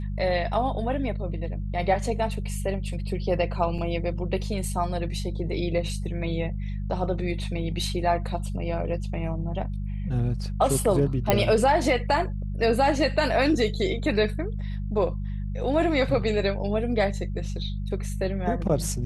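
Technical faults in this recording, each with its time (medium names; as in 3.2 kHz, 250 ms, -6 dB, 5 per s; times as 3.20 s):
hum 50 Hz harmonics 4 -30 dBFS
3.78–3.79 s: dropout 5.1 ms
11.30 s: pop -6 dBFS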